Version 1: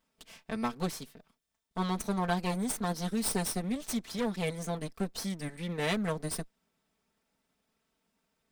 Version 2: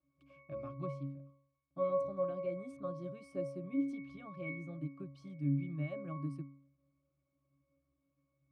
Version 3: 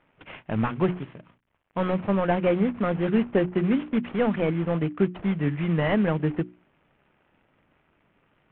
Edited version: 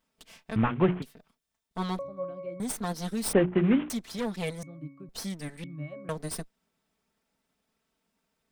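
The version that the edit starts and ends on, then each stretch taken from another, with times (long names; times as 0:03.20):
1
0:00.56–0:01.02: punch in from 3
0:01.99–0:02.60: punch in from 2
0:03.33–0:03.90: punch in from 3
0:04.63–0:05.09: punch in from 2
0:05.64–0:06.09: punch in from 2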